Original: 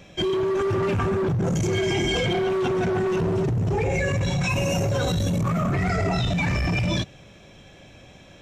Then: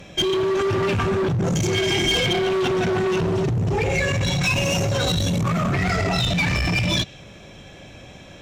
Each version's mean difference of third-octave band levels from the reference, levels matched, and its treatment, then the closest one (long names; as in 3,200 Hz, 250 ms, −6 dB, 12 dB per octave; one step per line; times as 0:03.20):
3.0 dB: dynamic equaliser 3,800 Hz, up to +8 dB, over −45 dBFS, Q 0.72
in parallel at −1 dB: downward compressor, threshold −32 dBFS, peak gain reduction 14 dB
on the sum: asymmetric clip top −19.5 dBFS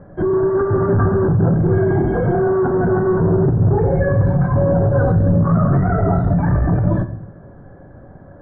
9.0 dB: elliptic low-pass filter 1,600 Hz, stop band 40 dB
low-shelf EQ 430 Hz +4.5 dB
rectangular room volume 100 cubic metres, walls mixed, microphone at 0.31 metres
level +4.5 dB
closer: first